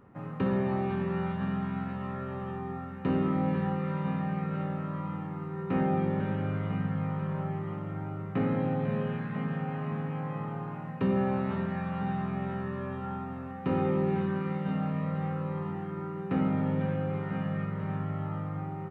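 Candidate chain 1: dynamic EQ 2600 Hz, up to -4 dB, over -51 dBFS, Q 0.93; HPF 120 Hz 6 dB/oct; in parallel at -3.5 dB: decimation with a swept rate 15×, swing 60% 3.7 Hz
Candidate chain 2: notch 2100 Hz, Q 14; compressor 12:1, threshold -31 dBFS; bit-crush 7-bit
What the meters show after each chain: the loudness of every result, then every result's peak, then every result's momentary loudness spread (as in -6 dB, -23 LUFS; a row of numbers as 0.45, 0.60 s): -29.0, -36.0 LUFS; -13.5, -22.0 dBFS; 9, 2 LU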